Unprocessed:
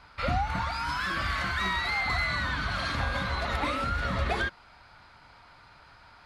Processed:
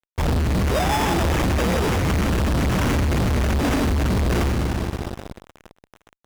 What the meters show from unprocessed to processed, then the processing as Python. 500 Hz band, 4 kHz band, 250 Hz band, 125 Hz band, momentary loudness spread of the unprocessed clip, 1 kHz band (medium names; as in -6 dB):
+12.5 dB, +3.5 dB, +16.5 dB, +13.5 dB, 3 LU, +4.0 dB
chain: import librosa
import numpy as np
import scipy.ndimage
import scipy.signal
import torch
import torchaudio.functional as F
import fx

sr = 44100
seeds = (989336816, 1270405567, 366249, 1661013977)

p1 = fx.rider(x, sr, range_db=10, speed_s=0.5)
p2 = x + F.gain(torch.from_numpy(p1), 0.0).numpy()
p3 = scipy.signal.sosfilt(scipy.signal.ellip(3, 1.0, 40, [350.0, 4500.0], 'bandstop', fs=sr, output='sos'), p2)
p4 = fx.high_shelf(p3, sr, hz=4300.0, db=9.0)
p5 = fx.hum_notches(p4, sr, base_hz=50, count=6)
p6 = p5 + fx.echo_heads(p5, sr, ms=61, heads='second and third', feedback_pct=73, wet_db=-15, dry=0)
p7 = fx.sample_hold(p6, sr, seeds[0], rate_hz=4300.0, jitter_pct=0)
p8 = fx.high_shelf(p7, sr, hz=9000.0, db=-6.5)
p9 = fx.fuzz(p8, sr, gain_db=43.0, gate_db=-45.0)
y = F.gain(torch.from_numpy(p9), -5.0).numpy()